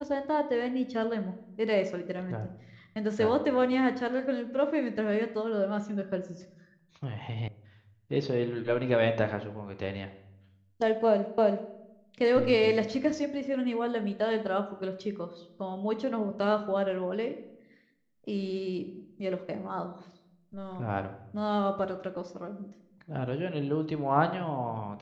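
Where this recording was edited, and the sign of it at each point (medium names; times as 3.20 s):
7.48 s: sound stops dead
11.38 s: repeat of the last 0.33 s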